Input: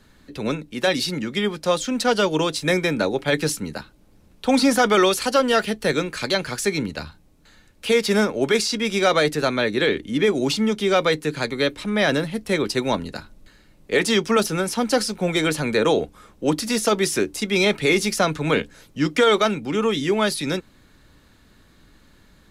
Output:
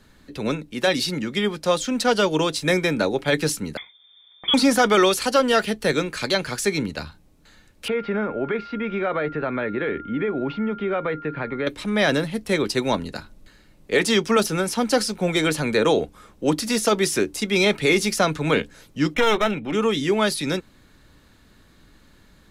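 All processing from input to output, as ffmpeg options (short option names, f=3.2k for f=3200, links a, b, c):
-filter_complex "[0:a]asettb=1/sr,asplit=3[a][b][c];[a]atrim=end=3.774[d];[b]atrim=start=3.77:end=4.54,asetpts=PTS-STARTPTS,afade=t=in:d=0.004:c=qsin,afade=t=out:st=0.766:d=0.004:c=qsin,lowpass=f=3.1k:t=q:w=0.5098,lowpass=f=3.1k:t=q:w=0.6013,lowpass=f=3.1k:t=q:w=0.9,lowpass=f=3.1k:t=q:w=2.563,afreqshift=-3600,asuperstop=centerf=2800:order=8:qfactor=4.2[e];[c]atrim=start=4.536[f];[d][e]acrossfade=d=0.004:c1=hsin:c2=qsin[g];[g][f]acrossfade=d=0.004:c1=qsin:c2=hsin,asettb=1/sr,asplit=3[h][i][j];[h]atrim=end=7.884[k];[i]atrim=start=7.88:end=11.67,asetpts=PTS-STARTPTS,afade=t=in:d=0.004:c=qsin,afade=t=out:st=3.786:d=0.004:c=qsin,acompressor=threshold=-22dB:ratio=2.5:attack=3.2:release=140:knee=1:detection=peak,lowpass=f=2.3k:w=0.5412,lowpass=f=2.3k:w=1.3066,aeval=exprs='val(0)+0.0141*sin(2*PI*1400*n/s)':c=same[l];[j]atrim=start=11.666[m];[k][l]acrossfade=d=0.004:c1=hsin:c2=qsin[n];[n][m]acrossfade=d=0.004:c1=qsin:c2=hsin,asettb=1/sr,asplit=3[o][p][q];[o]atrim=end=19.144[r];[p]atrim=start=19.14:end=19.73,asetpts=PTS-STARTPTS,afade=t=in:d=0.004:c=qsin,afade=t=out:st=0.586:d=0.004:c=qsin,highshelf=f=4.2k:t=q:w=1.5:g=-11,aeval=exprs='clip(val(0),-1,0.0596)':c=same,asuperstop=centerf=4600:order=12:qfactor=5.3[s];[q]atrim=start=19.726[t];[r][s]acrossfade=d=0.004:c1=hsin:c2=qsin[u];[u][t]acrossfade=d=0.004:c1=qsin:c2=hsin"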